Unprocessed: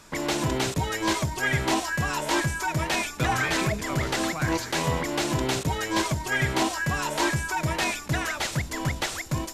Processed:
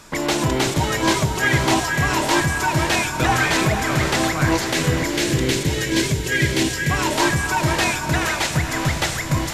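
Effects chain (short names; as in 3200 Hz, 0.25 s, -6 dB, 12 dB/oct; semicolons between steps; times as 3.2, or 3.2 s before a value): 4.73–6.9 band shelf 930 Hz -13.5 dB 1.3 oct; diffused feedback echo 0.501 s, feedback 43%, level -6.5 dB; gain +6 dB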